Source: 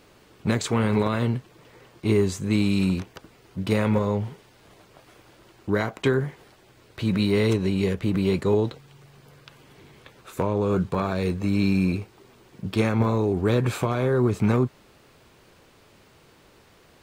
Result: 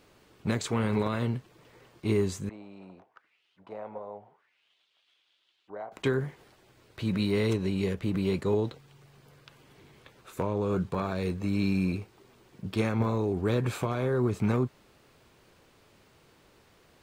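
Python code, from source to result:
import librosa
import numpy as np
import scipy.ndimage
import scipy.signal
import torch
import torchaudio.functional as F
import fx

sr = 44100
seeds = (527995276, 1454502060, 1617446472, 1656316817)

y = fx.auto_wah(x, sr, base_hz=710.0, top_hz=3700.0, q=3.8, full_db=-25.0, direction='down', at=(2.49, 5.92))
y = y * librosa.db_to_amplitude(-5.5)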